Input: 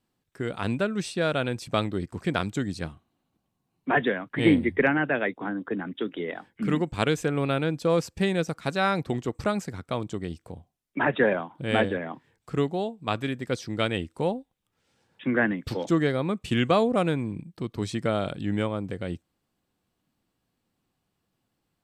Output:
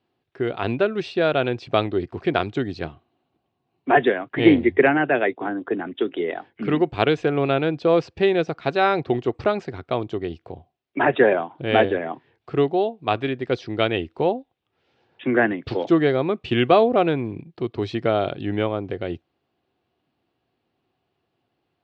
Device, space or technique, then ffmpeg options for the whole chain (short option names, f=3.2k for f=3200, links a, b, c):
guitar cabinet: -af "highpass=75,equalizer=f=190:t=q:w=4:g=-8,equalizer=f=380:t=q:w=4:g=8,equalizer=f=710:t=q:w=4:g=7,equalizer=f=2.7k:t=q:w=4:g=3,lowpass=f=4.3k:w=0.5412,lowpass=f=4.3k:w=1.3066,volume=3dB"